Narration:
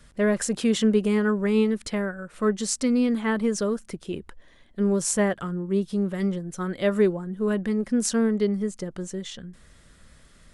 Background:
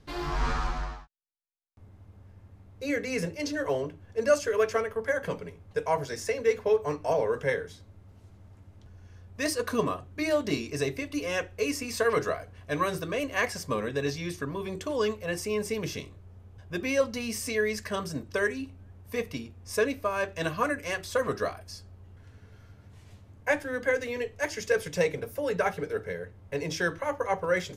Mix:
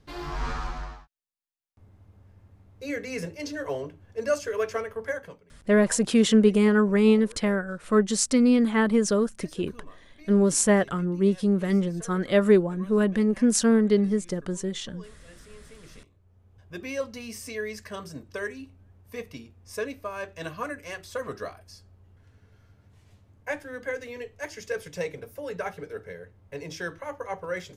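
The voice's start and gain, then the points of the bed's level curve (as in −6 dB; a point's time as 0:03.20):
5.50 s, +2.5 dB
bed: 0:05.13 −2.5 dB
0:05.45 −21 dB
0:15.67 −21 dB
0:16.62 −5.5 dB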